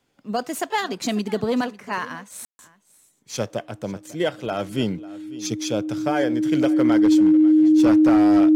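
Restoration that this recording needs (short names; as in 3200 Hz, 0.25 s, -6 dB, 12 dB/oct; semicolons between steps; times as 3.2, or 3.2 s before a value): clip repair -11 dBFS; notch 310 Hz, Q 30; room tone fill 2.45–2.59; inverse comb 0.546 s -19.5 dB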